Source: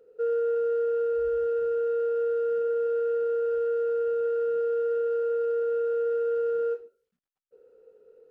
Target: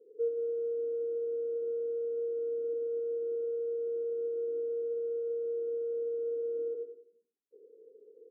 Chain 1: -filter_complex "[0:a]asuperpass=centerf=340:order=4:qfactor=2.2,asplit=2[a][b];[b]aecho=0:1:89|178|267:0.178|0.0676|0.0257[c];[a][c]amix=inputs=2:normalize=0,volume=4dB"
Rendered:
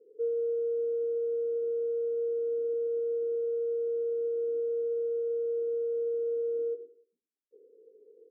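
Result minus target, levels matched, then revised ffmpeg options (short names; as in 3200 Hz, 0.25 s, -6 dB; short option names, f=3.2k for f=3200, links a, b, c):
echo-to-direct -10 dB
-filter_complex "[0:a]asuperpass=centerf=340:order=4:qfactor=2.2,asplit=2[a][b];[b]aecho=0:1:89|178|267|356|445:0.562|0.214|0.0812|0.0309|0.0117[c];[a][c]amix=inputs=2:normalize=0,volume=4dB"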